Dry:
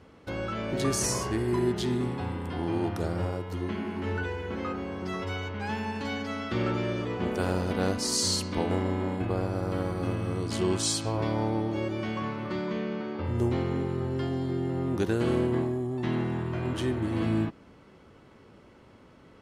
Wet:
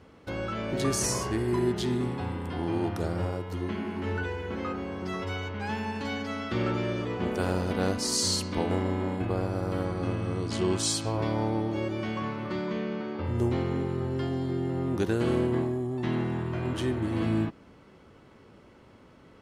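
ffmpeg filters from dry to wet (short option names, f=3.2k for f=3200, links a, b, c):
-filter_complex "[0:a]asettb=1/sr,asplit=3[a][b][c];[a]atrim=end=9.854[d];[b]atrim=start=9.85:end=10.78,asetpts=PTS-STARTPTS,afade=t=in:d=0.004:c=qsin,afade=t=out:st=0.926:d=0.004:c=qsin,lowpass=8.3k[e];[c]atrim=start=10.776[f];[d][e]acrossfade=d=0.004:c1=hsin:c2=qsin[g];[g][f]acrossfade=d=0.004:c1=qsin:c2=hsin"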